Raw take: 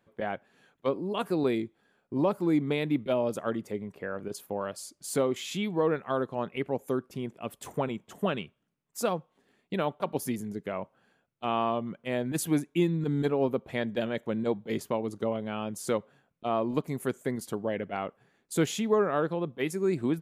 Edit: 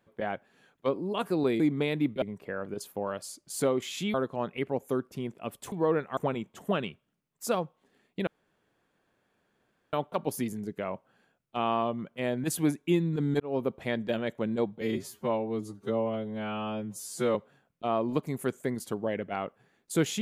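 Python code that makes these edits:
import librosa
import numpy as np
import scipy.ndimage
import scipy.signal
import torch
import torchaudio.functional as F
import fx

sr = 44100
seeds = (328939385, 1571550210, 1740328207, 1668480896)

y = fx.edit(x, sr, fx.cut(start_s=1.6, length_s=0.9),
    fx.cut(start_s=3.12, length_s=0.64),
    fx.move(start_s=5.68, length_s=0.45, to_s=7.71),
    fx.insert_room_tone(at_s=9.81, length_s=1.66),
    fx.fade_in_span(start_s=13.28, length_s=0.33, curve='qsin'),
    fx.stretch_span(start_s=14.69, length_s=1.27, factor=2.0), tone=tone)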